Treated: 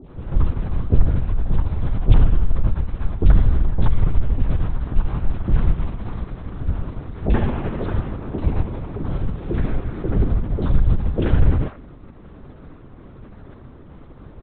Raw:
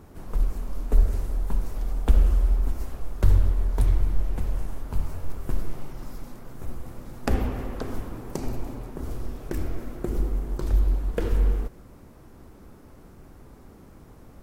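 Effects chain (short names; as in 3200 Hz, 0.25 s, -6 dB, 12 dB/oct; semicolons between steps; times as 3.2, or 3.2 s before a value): in parallel at -2.5 dB: limiter -15 dBFS, peak gain reduction 9 dB; on the sum: three bands offset in time lows, highs, mids 40/80 ms, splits 680/2400 Hz; LPC vocoder at 8 kHz whisper; gain +2 dB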